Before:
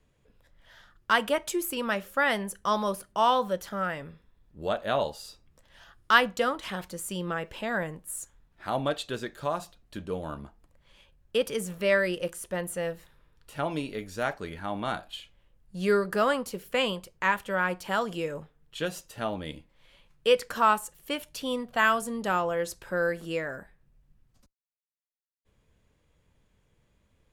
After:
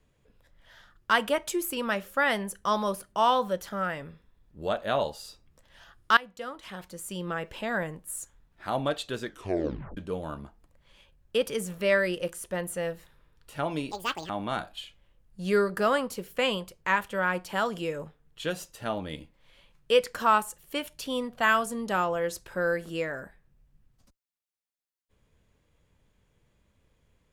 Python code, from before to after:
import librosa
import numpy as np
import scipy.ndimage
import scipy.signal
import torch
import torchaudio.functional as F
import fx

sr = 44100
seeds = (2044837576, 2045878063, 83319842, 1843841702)

y = fx.edit(x, sr, fx.fade_in_from(start_s=6.17, length_s=1.3, floor_db=-21.0),
    fx.tape_stop(start_s=9.26, length_s=0.71),
    fx.speed_span(start_s=13.91, length_s=0.74, speed=1.93), tone=tone)